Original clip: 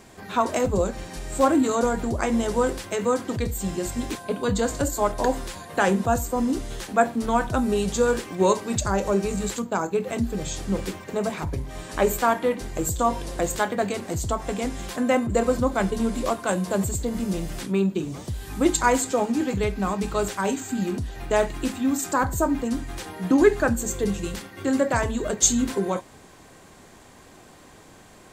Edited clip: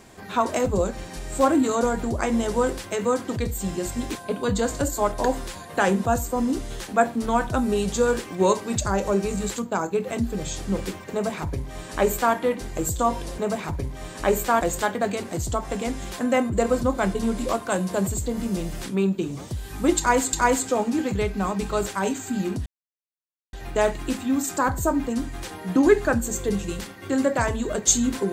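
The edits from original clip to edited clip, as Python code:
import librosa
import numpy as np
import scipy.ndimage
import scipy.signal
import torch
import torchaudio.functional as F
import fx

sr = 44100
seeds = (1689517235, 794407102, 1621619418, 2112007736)

y = fx.edit(x, sr, fx.duplicate(start_s=11.12, length_s=1.23, to_s=13.38),
    fx.repeat(start_s=18.75, length_s=0.35, count=2),
    fx.insert_silence(at_s=21.08, length_s=0.87), tone=tone)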